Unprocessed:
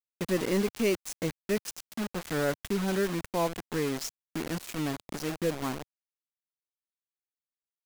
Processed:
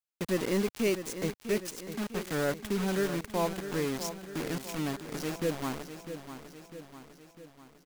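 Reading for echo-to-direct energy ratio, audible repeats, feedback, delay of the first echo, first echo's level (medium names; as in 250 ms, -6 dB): -9.0 dB, 5, 55%, 651 ms, -10.5 dB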